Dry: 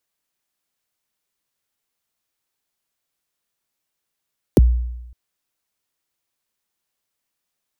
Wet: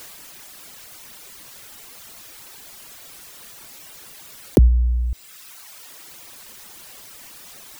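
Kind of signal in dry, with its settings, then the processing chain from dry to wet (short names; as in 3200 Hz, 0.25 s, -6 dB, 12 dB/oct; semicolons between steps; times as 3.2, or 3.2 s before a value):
kick drum length 0.56 s, from 530 Hz, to 60 Hz, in 25 ms, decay 0.98 s, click on, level -5.5 dB
reverb removal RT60 0.93 s; fast leveller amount 70%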